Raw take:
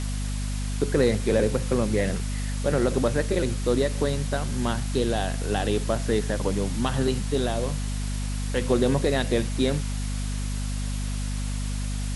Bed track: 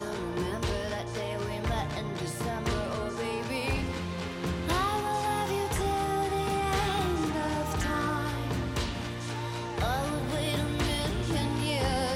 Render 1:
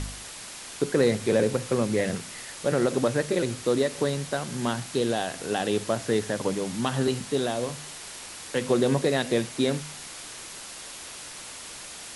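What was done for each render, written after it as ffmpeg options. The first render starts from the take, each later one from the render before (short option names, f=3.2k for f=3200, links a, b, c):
-af "bandreject=f=50:t=h:w=4,bandreject=f=100:t=h:w=4,bandreject=f=150:t=h:w=4,bandreject=f=200:t=h:w=4,bandreject=f=250:t=h:w=4"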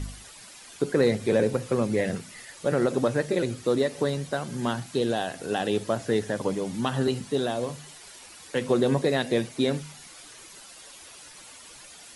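-af "afftdn=nr=10:nf=-41"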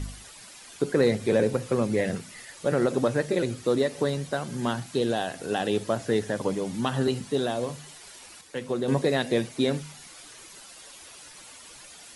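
-filter_complex "[0:a]asplit=3[a][b][c];[a]atrim=end=8.412[d];[b]atrim=start=8.408:end=8.882,asetpts=PTS-STARTPTS,volume=-6dB[e];[c]atrim=start=8.878[f];[d][e]acrossfade=d=0.004:c1=hsin:c2=hsin[g];[g][f]acrossfade=d=0.004:c1=hsin:c2=hsin"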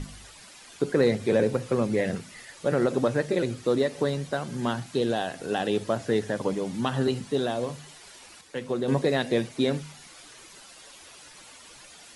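-af "highshelf=f=9.9k:g=-8.5,bandreject=f=50:t=h:w=6,bandreject=f=100:t=h:w=6"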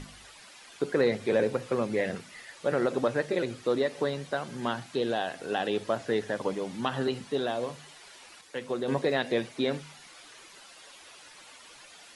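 -filter_complex "[0:a]acrossover=split=4500[a][b];[b]acompressor=threshold=-54dB:ratio=4:attack=1:release=60[c];[a][c]amix=inputs=2:normalize=0,lowshelf=f=270:g=-10"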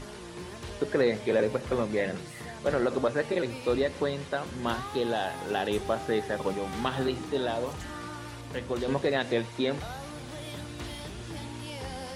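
-filter_complex "[1:a]volume=-10dB[a];[0:a][a]amix=inputs=2:normalize=0"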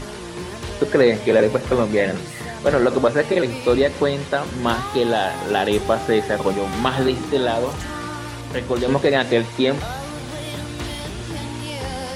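-af "volume=10dB"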